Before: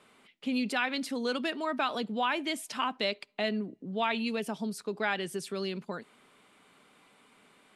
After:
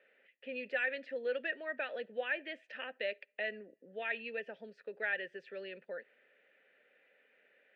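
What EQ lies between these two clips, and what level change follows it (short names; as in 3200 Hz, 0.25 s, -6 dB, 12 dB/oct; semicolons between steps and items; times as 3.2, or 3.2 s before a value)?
vowel filter e; air absorption 150 m; bell 1600 Hz +11 dB 1.5 oct; +1.0 dB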